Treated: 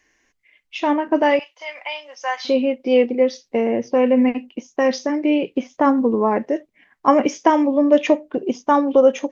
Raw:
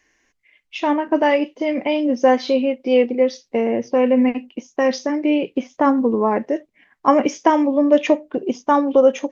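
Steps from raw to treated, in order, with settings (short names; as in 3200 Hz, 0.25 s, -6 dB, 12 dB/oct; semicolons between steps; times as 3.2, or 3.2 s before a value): 1.39–2.45 HPF 890 Hz 24 dB/oct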